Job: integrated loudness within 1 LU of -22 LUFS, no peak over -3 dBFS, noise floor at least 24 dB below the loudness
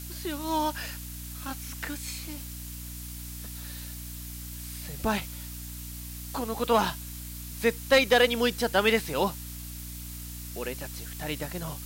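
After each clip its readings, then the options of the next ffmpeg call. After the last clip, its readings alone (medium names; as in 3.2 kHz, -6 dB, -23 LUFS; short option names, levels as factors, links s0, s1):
hum 60 Hz; highest harmonic 300 Hz; hum level -39 dBFS; noise floor -40 dBFS; noise floor target -54 dBFS; loudness -30.0 LUFS; peak level -11.5 dBFS; loudness target -22.0 LUFS
-> -af "bandreject=f=60:t=h:w=6,bandreject=f=120:t=h:w=6,bandreject=f=180:t=h:w=6,bandreject=f=240:t=h:w=6,bandreject=f=300:t=h:w=6"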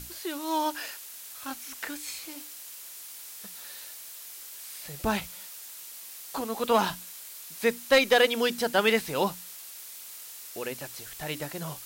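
hum not found; noise floor -44 dBFS; noise floor target -53 dBFS
-> -af "afftdn=nr=9:nf=-44"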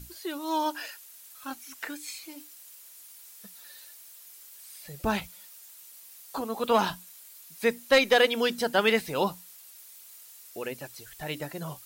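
noise floor -50 dBFS; noise floor target -52 dBFS
-> -af "afftdn=nr=6:nf=-50"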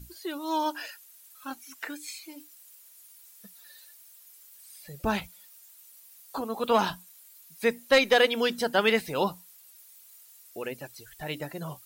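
noise floor -54 dBFS; loudness -28.0 LUFS; peak level -11.5 dBFS; loudness target -22.0 LUFS
-> -af "volume=2"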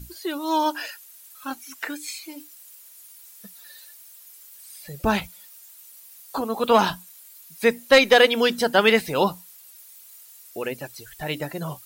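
loudness -22.0 LUFS; peak level -5.5 dBFS; noise floor -48 dBFS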